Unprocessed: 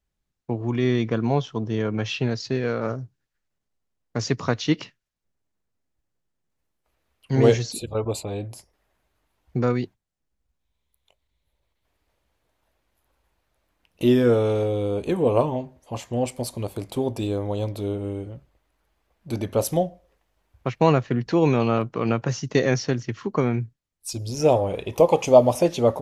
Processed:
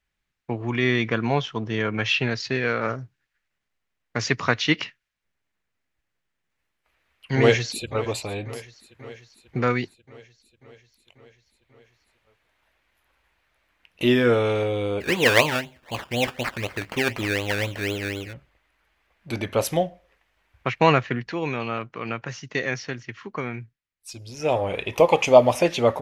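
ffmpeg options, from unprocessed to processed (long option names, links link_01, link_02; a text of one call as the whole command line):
ffmpeg -i in.wav -filter_complex "[0:a]asplit=2[link_01][link_02];[link_02]afade=type=in:start_time=7.37:duration=0.01,afade=type=out:start_time=8.04:duration=0.01,aecho=0:1:540|1080|1620|2160|2700|3240|3780|4320:0.125893|0.0881248|0.0616873|0.0431811|0.0302268|0.0211588|0.0148111|0.0103678[link_03];[link_01][link_03]amix=inputs=2:normalize=0,asplit=3[link_04][link_05][link_06];[link_04]afade=type=out:start_time=15:duration=0.02[link_07];[link_05]acrusher=samples=17:mix=1:aa=0.000001:lfo=1:lforange=10.2:lforate=4,afade=type=in:start_time=15:duration=0.02,afade=type=out:start_time=18.32:duration=0.02[link_08];[link_06]afade=type=in:start_time=18.32:duration=0.02[link_09];[link_07][link_08][link_09]amix=inputs=3:normalize=0,asplit=3[link_10][link_11][link_12];[link_10]atrim=end=21.33,asetpts=PTS-STARTPTS,afade=type=out:start_time=21.04:duration=0.29:silence=0.398107[link_13];[link_11]atrim=start=21.33:end=24.41,asetpts=PTS-STARTPTS,volume=-8dB[link_14];[link_12]atrim=start=24.41,asetpts=PTS-STARTPTS,afade=type=in:duration=0.29:silence=0.398107[link_15];[link_13][link_14][link_15]concat=n=3:v=0:a=1,equalizer=frequency=2100:width_type=o:width=1.9:gain=13.5,volume=-2.5dB" out.wav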